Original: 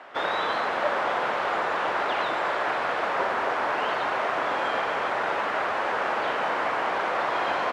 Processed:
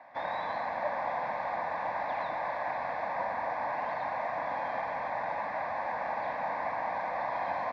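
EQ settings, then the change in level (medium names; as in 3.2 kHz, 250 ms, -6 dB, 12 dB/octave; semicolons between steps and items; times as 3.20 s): Bessel low-pass 6.5 kHz; treble shelf 2.3 kHz -12 dB; static phaser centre 2 kHz, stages 8; -2.5 dB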